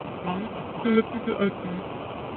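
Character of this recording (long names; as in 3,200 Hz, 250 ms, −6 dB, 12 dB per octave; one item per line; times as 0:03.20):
a quantiser's noise floor 6 bits, dither triangular
phaser sweep stages 12, 2.3 Hz, lowest notch 480–2,600 Hz
aliases and images of a low sample rate 1,800 Hz, jitter 0%
AMR narrowband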